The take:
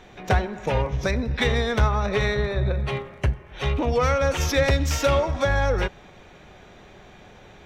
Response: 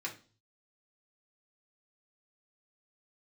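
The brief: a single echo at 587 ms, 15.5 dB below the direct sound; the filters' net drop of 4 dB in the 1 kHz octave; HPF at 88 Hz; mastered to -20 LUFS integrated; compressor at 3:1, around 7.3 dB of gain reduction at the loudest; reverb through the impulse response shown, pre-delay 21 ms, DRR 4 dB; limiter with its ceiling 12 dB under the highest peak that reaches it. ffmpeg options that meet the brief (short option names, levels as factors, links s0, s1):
-filter_complex "[0:a]highpass=88,equalizer=f=1000:t=o:g=-5.5,acompressor=threshold=0.0398:ratio=3,alimiter=level_in=1.5:limit=0.0631:level=0:latency=1,volume=0.668,aecho=1:1:587:0.168,asplit=2[s0][s1];[1:a]atrim=start_sample=2205,adelay=21[s2];[s1][s2]afir=irnorm=-1:irlink=0,volume=0.501[s3];[s0][s3]amix=inputs=2:normalize=0,volume=5.96"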